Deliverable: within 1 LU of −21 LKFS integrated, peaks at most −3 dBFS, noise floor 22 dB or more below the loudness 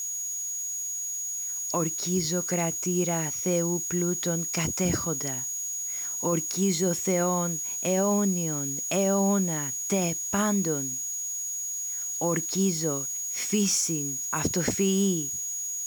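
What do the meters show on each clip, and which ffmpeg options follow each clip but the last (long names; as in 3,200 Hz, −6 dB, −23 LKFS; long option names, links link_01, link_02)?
interfering tone 6,700 Hz; level of the tone −30 dBFS; background noise floor −33 dBFS; target noise floor −49 dBFS; integrated loudness −26.5 LKFS; sample peak −12.5 dBFS; target loudness −21.0 LKFS
→ -af "bandreject=frequency=6700:width=30"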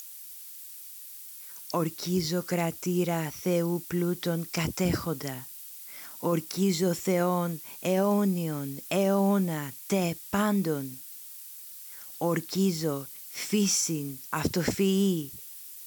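interfering tone none found; background noise floor −45 dBFS; target noise floor −51 dBFS
→ -af "afftdn=noise_reduction=6:noise_floor=-45"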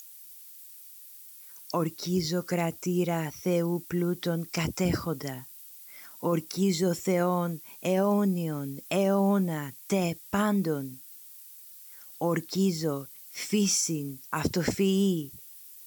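background noise floor −49 dBFS; target noise floor −51 dBFS
→ -af "afftdn=noise_reduction=6:noise_floor=-49"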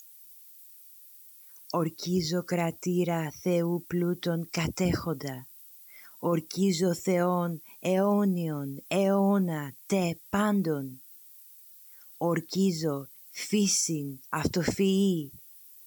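background noise floor −52 dBFS; integrated loudness −28.5 LKFS; sample peak −13.5 dBFS; target loudness −21.0 LKFS
→ -af "volume=7.5dB"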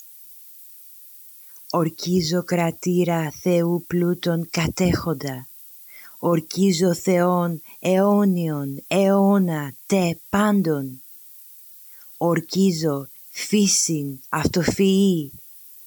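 integrated loudness −21.0 LKFS; sample peak −6.0 dBFS; background noise floor −45 dBFS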